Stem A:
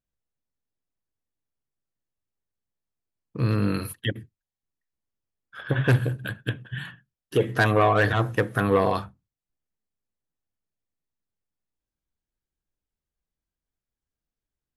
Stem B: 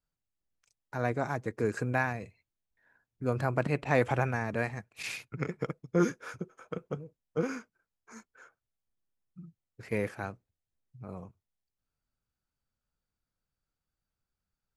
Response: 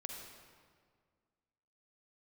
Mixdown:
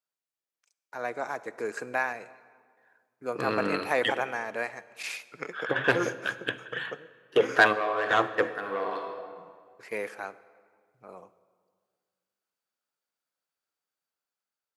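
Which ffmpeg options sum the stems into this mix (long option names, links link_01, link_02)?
-filter_complex "[0:a]adynamicsmooth=sensitivity=1.5:basefreq=4600,volume=-1.5dB,asplit=2[link_01][link_02];[link_02]volume=-7dB[link_03];[1:a]volume=-3dB,asplit=3[link_04][link_05][link_06];[link_05]volume=-9.5dB[link_07];[link_06]apad=whole_len=651082[link_08];[link_01][link_08]sidechaingate=range=-33dB:threshold=-59dB:ratio=16:detection=peak[link_09];[2:a]atrim=start_sample=2205[link_10];[link_03][link_07]amix=inputs=2:normalize=0[link_11];[link_11][link_10]afir=irnorm=-1:irlink=0[link_12];[link_09][link_04][link_12]amix=inputs=3:normalize=0,dynaudnorm=framelen=440:gausssize=5:maxgain=3.5dB,highpass=470"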